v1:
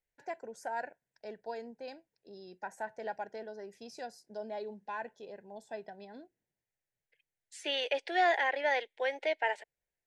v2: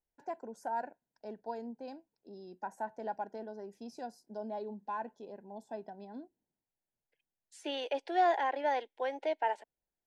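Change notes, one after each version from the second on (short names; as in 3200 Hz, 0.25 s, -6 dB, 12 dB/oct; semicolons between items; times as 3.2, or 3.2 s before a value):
master: add graphic EQ 125/250/500/1000/2000/4000/8000 Hz -5/+8/-4/+6/-11/-4/-5 dB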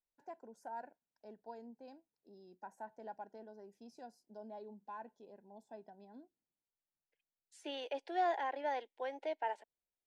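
first voice -9.5 dB; second voice -6.0 dB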